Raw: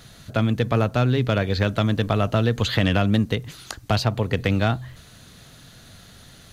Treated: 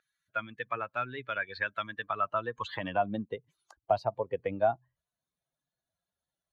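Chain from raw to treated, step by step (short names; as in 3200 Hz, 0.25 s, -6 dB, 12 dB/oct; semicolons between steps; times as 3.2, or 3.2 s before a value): per-bin expansion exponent 2; wow and flutter 19 cents; band-pass sweep 1700 Hz -> 650 Hz, 1.93–3.28; gain +4.5 dB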